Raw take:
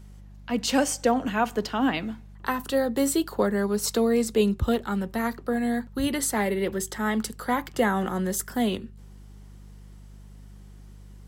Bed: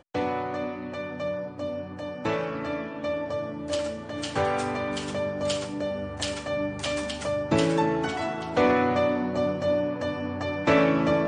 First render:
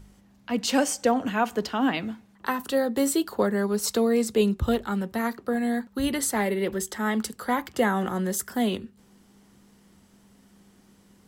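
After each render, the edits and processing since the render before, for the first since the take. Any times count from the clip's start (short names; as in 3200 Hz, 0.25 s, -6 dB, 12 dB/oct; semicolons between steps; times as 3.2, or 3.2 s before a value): de-hum 50 Hz, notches 3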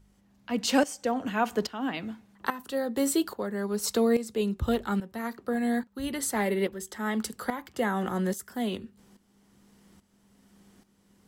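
tremolo saw up 1.2 Hz, depth 75%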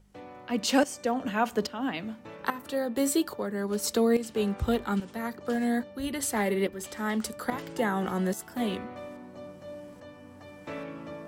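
add bed -18 dB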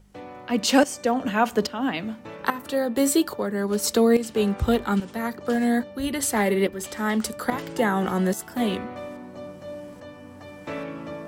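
gain +5.5 dB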